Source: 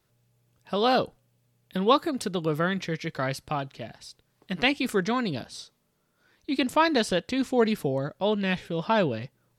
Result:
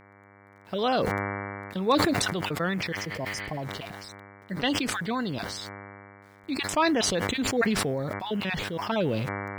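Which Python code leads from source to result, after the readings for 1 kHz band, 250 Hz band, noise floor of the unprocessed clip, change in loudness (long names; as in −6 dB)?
−2.0 dB, −1.0 dB, −72 dBFS, −1.5 dB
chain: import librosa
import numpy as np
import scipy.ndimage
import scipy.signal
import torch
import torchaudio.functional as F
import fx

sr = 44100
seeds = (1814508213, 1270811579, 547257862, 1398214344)

y = fx.spec_dropout(x, sr, seeds[0], share_pct=21)
y = scipy.signal.sosfilt(scipy.signal.butter(2, 8200.0, 'lowpass', fs=sr, output='sos'), y)
y = fx.quant_dither(y, sr, seeds[1], bits=10, dither='none')
y = fx.spec_repair(y, sr, seeds[2], start_s=3.03, length_s=0.57, low_hz=1100.0, high_hz=4800.0, source='before')
y = np.clip(y, -10.0 ** (-10.5 / 20.0), 10.0 ** (-10.5 / 20.0))
y = fx.dmg_buzz(y, sr, base_hz=100.0, harmonics=23, level_db=-51.0, tilt_db=-2, odd_only=False)
y = fx.sustainer(y, sr, db_per_s=23.0)
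y = y * librosa.db_to_amplitude(-3.0)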